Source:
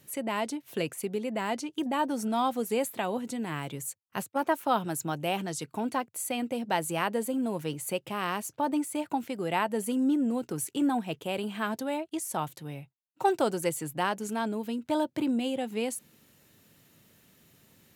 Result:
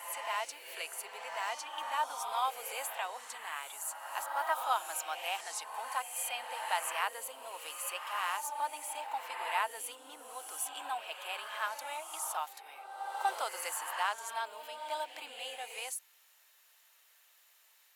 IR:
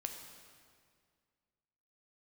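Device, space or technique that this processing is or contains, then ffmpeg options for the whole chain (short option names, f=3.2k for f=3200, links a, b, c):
ghost voice: -filter_complex "[0:a]areverse[a];[1:a]atrim=start_sample=2205[b];[a][b]afir=irnorm=-1:irlink=0,areverse,highpass=f=790:w=0.5412,highpass=f=790:w=1.3066"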